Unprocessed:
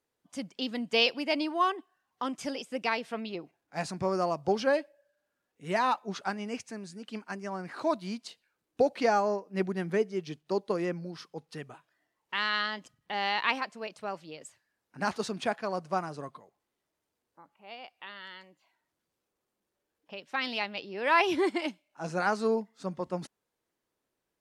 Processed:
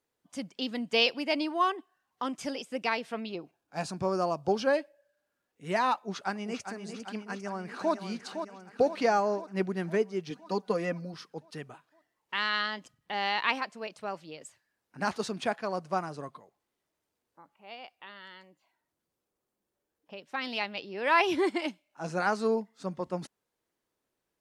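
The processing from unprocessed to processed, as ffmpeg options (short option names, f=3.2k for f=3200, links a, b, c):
-filter_complex "[0:a]asettb=1/sr,asplit=3[a][b][c];[a]atrim=end=3.314[d];[b]atrim=start=3.31:end=4.69,asetpts=PTS-STARTPTS,afade=t=in:d=0.004:c=qsin,afade=t=out:st=1.376:d=0.004:c=qsin,equalizer=f=2k:w=6.6:g=-10[e];[c]atrim=start=4.686[f];[d][e]acrossfade=d=0.004:c1=hsin:c2=qsin[g];[g][f]acrossfade=d=0.004:c1=qsin:c2=hsin,asplit=2[h][i];[i]afade=t=in:st=5.95:d=0.01,afade=t=out:st=6.69:d=0.01,aecho=0:1:400|800|1200|1600|2000|2400|2800|3200|3600|4000|4400:0.375837|0.263086|0.18416|0.128912|0.0902386|0.063167|0.0442169|0.0309518|0.0216663|0.0151664|0.0106165[j];[h][j]amix=inputs=2:normalize=0,asplit=2[k][l];[l]afade=t=in:st=7.29:d=0.01,afade=t=out:st=7.93:d=0.01,aecho=0:1:510|1020|1530|2040|2550|3060|3570|4080:0.398107|0.238864|0.143319|0.0859911|0.0515947|0.0309568|0.0185741|0.0111445[m];[k][m]amix=inputs=2:normalize=0,asettb=1/sr,asplit=3[n][o][p];[n]atrim=end=10.304[q];[o]atrim=start=10.3:end=11.14,asetpts=PTS-STARTPTS,afade=t=in:d=0.004:c=qsin,afade=t=out:st=0.836:d=0.004:c=qsin,aecho=1:1:4.1:0.69,atrim=end_sample=37044[r];[p]atrim=start=11.136[s];[q][r]acrossfade=d=0.004:c1=hsin:c2=qsin[t];[t][s]acrossfade=d=0.004:c1=qsin:c2=hsin,asettb=1/sr,asplit=3[u][v][w];[u]atrim=end=17.954[x];[v]atrim=start=17.95:end=20.53,asetpts=PTS-STARTPTS,afade=t=in:d=0.004:c=qsin,afade=t=out:st=2.576:d=0.004:c=qsin,equalizer=f=3k:w=0.4:g=-4[y];[w]atrim=start=20.526[z];[x][y]acrossfade=d=0.004:c1=hsin:c2=qsin[aa];[aa][z]acrossfade=d=0.004:c1=qsin:c2=hsin"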